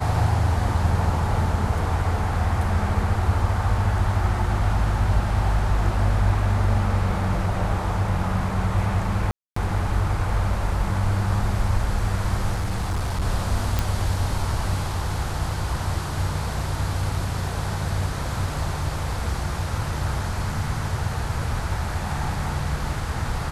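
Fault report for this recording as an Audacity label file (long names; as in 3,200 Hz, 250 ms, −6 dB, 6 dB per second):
9.310000	9.560000	drop-out 254 ms
12.540000	13.220000	clipping −20.5 dBFS
13.790000	13.790000	click −8 dBFS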